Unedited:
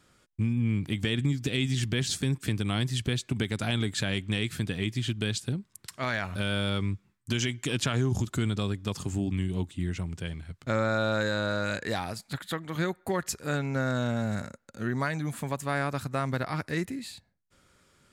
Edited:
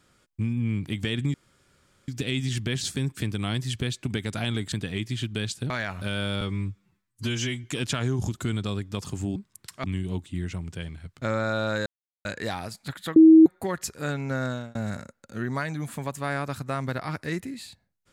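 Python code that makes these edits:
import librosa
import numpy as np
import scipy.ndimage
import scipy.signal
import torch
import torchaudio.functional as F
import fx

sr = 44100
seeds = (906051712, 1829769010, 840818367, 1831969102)

y = fx.edit(x, sr, fx.insert_room_tone(at_s=1.34, length_s=0.74),
    fx.cut(start_s=3.98, length_s=0.6),
    fx.move(start_s=5.56, length_s=0.48, to_s=9.29),
    fx.stretch_span(start_s=6.75, length_s=0.82, factor=1.5),
    fx.silence(start_s=11.31, length_s=0.39),
    fx.bleep(start_s=12.61, length_s=0.3, hz=320.0, db=-8.5),
    fx.fade_out_span(start_s=13.91, length_s=0.29), tone=tone)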